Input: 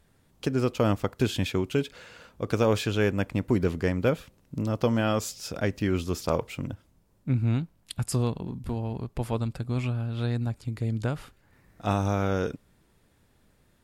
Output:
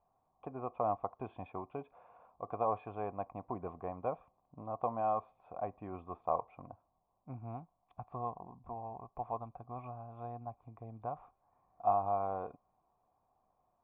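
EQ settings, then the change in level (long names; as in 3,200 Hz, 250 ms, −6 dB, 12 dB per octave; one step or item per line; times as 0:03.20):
formant resonators in series a
+6.5 dB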